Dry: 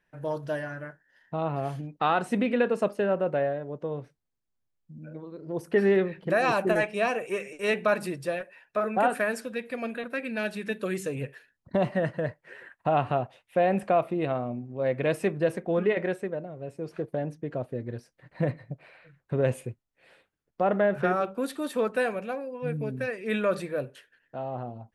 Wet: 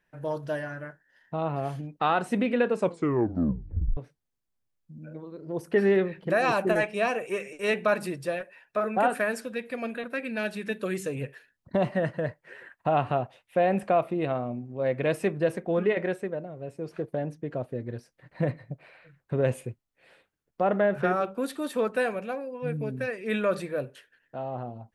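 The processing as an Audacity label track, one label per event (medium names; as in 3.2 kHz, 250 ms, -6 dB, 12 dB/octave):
2.740000	2.740000	tape stop 1.23 s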